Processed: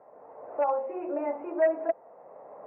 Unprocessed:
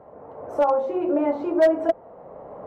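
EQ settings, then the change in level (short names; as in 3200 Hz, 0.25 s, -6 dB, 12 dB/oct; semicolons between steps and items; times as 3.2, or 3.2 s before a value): HPF 720 Hz 6 dB/oct; rippled Chebyshev low-pass 2700 Hz, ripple 3 dB; air absorption 210 m; -2.0 dB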